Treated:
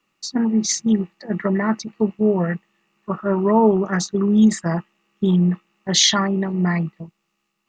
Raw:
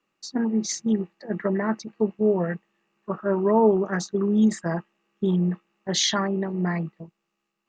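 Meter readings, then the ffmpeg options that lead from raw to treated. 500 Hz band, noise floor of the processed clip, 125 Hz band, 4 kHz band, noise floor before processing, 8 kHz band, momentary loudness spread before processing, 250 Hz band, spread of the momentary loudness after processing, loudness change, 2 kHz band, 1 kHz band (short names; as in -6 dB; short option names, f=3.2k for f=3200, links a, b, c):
+2.0 dB, -74 dBFS, +6.0 dB, +8.0 dB, -80 dBFS, +8.0 dB, 11 LU, +5.5 dB, 11 LU, +5.0 dB, +5.0 dB, +4.5 dB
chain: -af "equalizer=f=490:t=o:w=1.9:g=-6.5,bandreject=f=1.6k:w=11,volume=8dB"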